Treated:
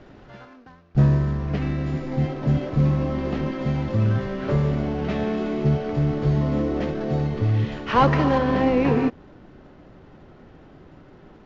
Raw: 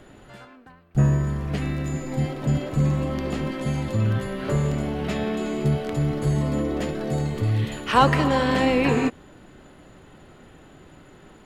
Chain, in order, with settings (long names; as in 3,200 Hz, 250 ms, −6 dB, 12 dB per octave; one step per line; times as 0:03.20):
variable-slope delta modulation 32 kbit/s
low-pass filter 1,900 Hz 6 dB per octave, from 0:08.38 1,100 Hz
level +2 dB